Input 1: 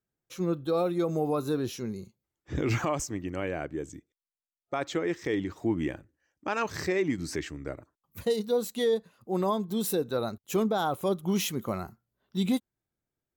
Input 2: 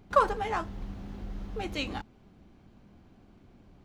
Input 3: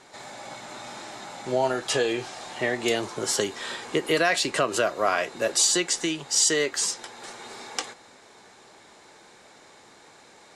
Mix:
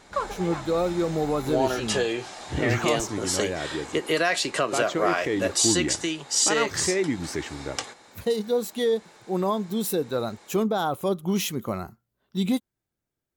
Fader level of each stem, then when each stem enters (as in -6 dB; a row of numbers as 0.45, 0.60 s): +2.5, -5.5, -1.0 dB; 0.00, 0.00, 0.00 s